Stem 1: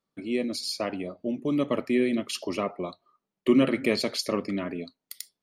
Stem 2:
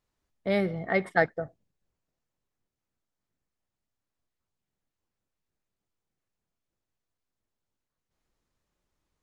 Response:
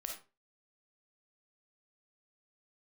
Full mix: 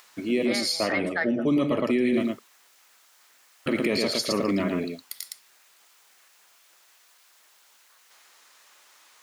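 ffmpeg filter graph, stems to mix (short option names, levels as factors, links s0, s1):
-filter_complex "[0:a]volume=1.41,asplit=3[s0][s1][s2];[s0]atrim=end=2.28,asetpts=PTS-STARTPTS,afade=t=out:st=2.276:d=0.004:c=hsin[s3];[s1]atrim=start=2.28:end=3.66,asetpts=PTS-STARTPTS,volume=0[s4];[s2]atrim=start=3.66,asetpts=PTS-STARTPTS,afade=t=in:d=0.004:c=hsin[s5];[s3][s4][s5]concat=n=3:v=0:a=1,asplit=3[s6][s7][s8];[s7]volume=0.251[s9];[s8]volume=0.668[s10];[1:a]highpass=1100,acompressor=mode=upward:threshold=0.0141:ratio=2.5,volume=1.33,asplit=2[s11][s12];[s12]volume=0.141[s13];[2:a]atrim=start_sample=2205[s14];[s9][s13]amix=inputs=2:normalize=0[s15];[s15][s14]afir=irnorm=-1:irlink=0[s16];[s10]aecho=0:1:113:1[s17];[s6][s11][s16][s17]amix=inputs=4:normalize=0,alimiter=limit=0.168:level=0:latency=1:release=11"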